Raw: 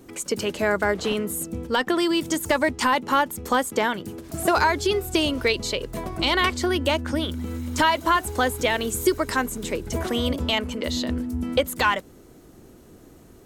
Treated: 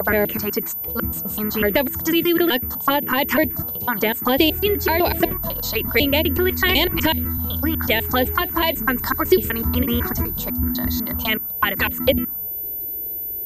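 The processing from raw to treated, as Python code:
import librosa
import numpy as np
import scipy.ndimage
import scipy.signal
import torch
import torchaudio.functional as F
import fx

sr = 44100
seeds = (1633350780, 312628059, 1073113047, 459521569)

y = fx.block_reorder(x, sr, ms=125.0, group=7)
y = fx.env_phaser(y, sr, low_hz=190.0, high_hz=1300.0, full_db=-17.0)
y = fx.pwm(y, sr, carrier_hz=14000.0)
y = y * librosa.db_to_amplitude(6.5)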